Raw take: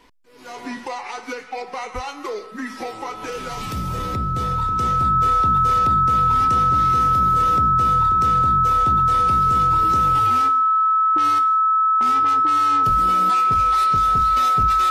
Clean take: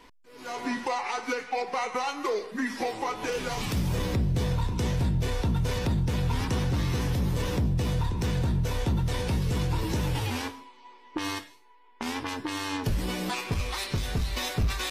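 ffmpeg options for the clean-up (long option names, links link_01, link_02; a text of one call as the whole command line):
ffmpeg -i in.wav -filter_complex "[0:a]bandreject=frequency=1300:width=30,asplit=3[link_01][link_02][link_03];[link_01]afade=type=out:start_time=1.94:duration=0.02[link_04];[link_02]highpass=frequency=140:width=0.5412,highpass=frequency=140:width=1.3066,afade=type=in:start_time=1.94:duration=0.02,afade=type=out:start_time=2.06:duration=0.02[link_05];[link_03]afade=type=in:start_time=2.06:duration=0.02[link_06];[link_04][link_05][link_06]amix=inputs=3:normalize=0" out.wav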